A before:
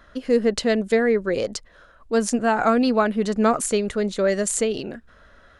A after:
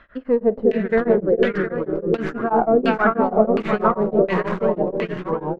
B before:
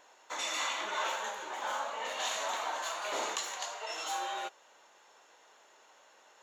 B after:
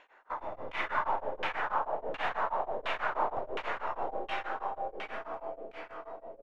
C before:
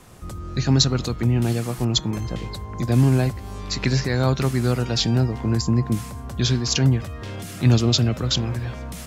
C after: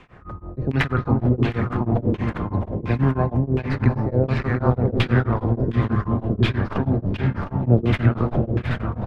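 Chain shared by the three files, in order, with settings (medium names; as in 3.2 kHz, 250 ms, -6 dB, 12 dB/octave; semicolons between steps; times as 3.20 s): tracing distortion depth 0.33 ms; on a send: multi-tap echo 49/96/400/710 ms -16.5/-18/-4/-8 dB; on the sum: ever faster or slower copies 289 ms, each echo -3 st, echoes 2, each echo -6 dB; LFO low-pass saw down 1.4 Hz 420–2700 Hz; tremolo of two beating tones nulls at 6.2 Hz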